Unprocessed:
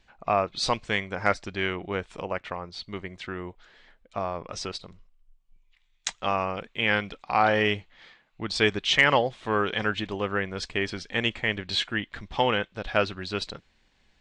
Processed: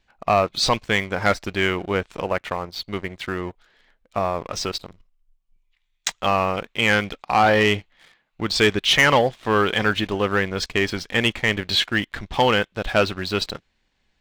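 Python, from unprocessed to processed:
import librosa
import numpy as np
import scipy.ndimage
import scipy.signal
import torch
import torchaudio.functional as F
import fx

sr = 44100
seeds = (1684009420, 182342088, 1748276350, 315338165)

y = fx.leveller(x, sr, passes=2)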